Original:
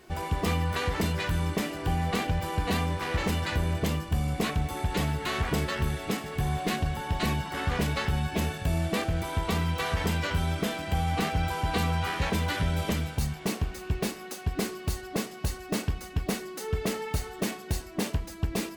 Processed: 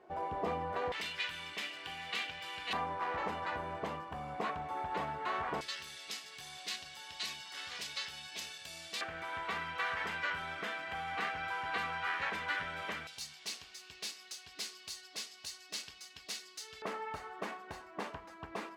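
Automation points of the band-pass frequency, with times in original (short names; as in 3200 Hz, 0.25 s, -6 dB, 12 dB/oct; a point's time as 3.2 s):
band-pass, Q 1.5
680 Hz
from 0.92 s 2900 Hz
from 2.73 s 950 Hz
from 5.61 s 4800 Hz
from 9.01 s 1600 Hz
from 13.07 s 4700 Hz
from 16.82 s 1100 Hz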